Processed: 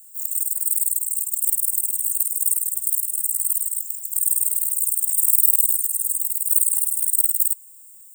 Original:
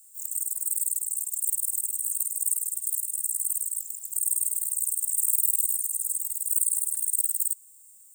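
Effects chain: RIAA curve recording; gain -8.5 dB

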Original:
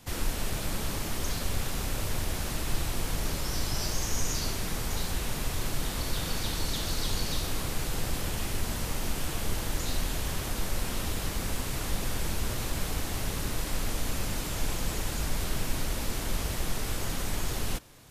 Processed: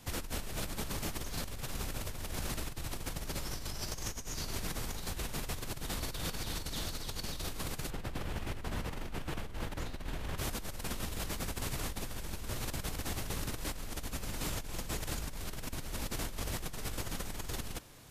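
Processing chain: 7.9–10.38 tone controls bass 0 dB, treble -12 dB; negative-ratio compressor -33 dBFS, ratio -1; gain -5 dB

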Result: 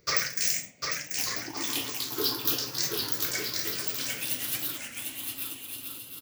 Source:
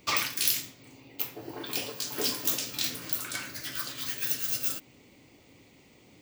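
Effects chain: moving spectral ripple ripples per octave 0.57, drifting +0.36 Hz, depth 15 dB; sample leveller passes 1; on a send: bouncing-ball echo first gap 0.75 s, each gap 0.6×, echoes 5; on the sum: record warp 33 1/3 rpm, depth 160 cents; gain -6 dB

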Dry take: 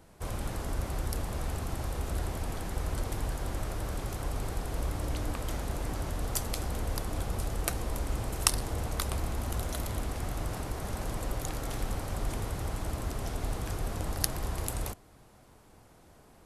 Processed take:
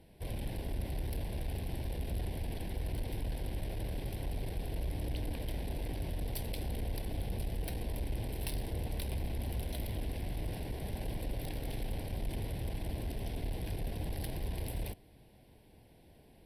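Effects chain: tube stage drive 29 dB, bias 0.35; fixed phaser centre 3000 Hz, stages 4

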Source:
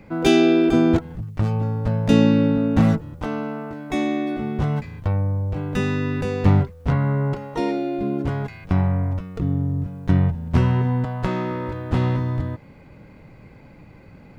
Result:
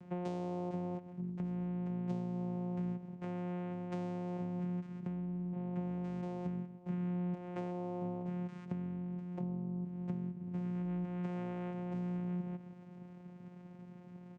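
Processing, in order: 5.25–6.04 running mean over 16 samples; on a send: echo 0.131 s -18 dB; on the sum: compressor 12:1, threshold -29 dBFS, peak gain reduction 19 dB; vocoder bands 4, saw 178 Hz; gain -5 dB

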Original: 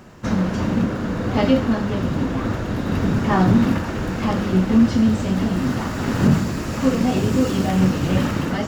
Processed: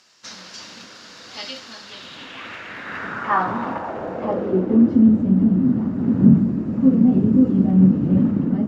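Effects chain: band-pass sweep 4900 Hz -> 220 Hz, 1.78–5.29; gain +7 dB

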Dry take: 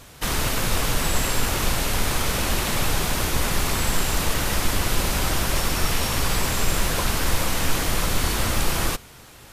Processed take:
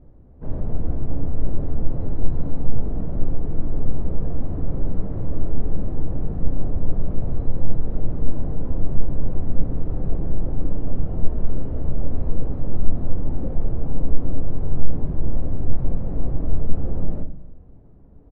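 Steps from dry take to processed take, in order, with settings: LPF 1200 Hz 12 dB/oct; tilt shelf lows +8 dB, about 910 Hz; wide varispeed 0.52×; on a send: echo 0.275 s -21.5 dB; on the sum: shoebox room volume 130 m³, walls mixed, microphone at 0.38 m; gain -6.5 dB

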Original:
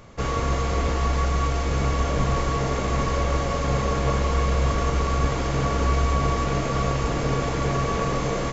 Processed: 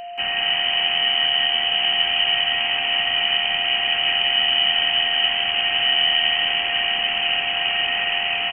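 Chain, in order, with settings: whine 2300 Hz -31 dBFS; inverted band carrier 3000 Hz; frequency-shifting echo 0.18 s, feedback 32%, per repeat +79 Hz, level -6.5 dB

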